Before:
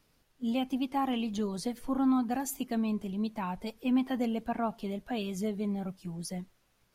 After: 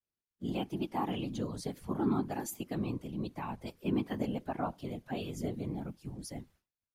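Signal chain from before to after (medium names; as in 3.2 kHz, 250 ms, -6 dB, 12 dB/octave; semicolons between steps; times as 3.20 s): whisper effect; expander -54 dBFS; trim -4.5 dB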